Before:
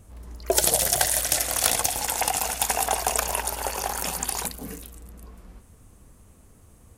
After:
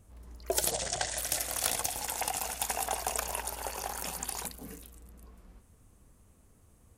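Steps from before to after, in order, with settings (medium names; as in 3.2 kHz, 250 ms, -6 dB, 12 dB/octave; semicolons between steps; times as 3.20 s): 0.71–1.18 s: steep low-pass 8.5 kHz 48 dB/octave; short-mantissa float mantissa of 6-bit; trim -8.5 dB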